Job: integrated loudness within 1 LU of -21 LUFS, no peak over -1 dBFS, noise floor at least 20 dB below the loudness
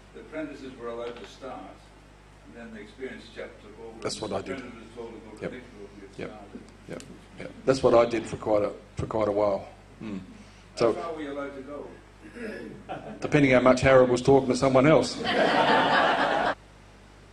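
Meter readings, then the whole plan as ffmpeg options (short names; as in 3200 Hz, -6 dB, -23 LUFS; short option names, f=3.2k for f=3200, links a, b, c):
hum 50 Hz; harmonics up to 200 Hz; hum level -51 dBFS; loudness -24.0 LUFS; peak -5.5 dBFS; loudness target -21.0 LUFS
-> -af "bandreject=f=50:t=h:w=4,bandreject=f=100:t=h:w=4,bandreject=f=150:t=h:w=4,bandreject=f=200:t=h:w=4"
-af "volume=3dB"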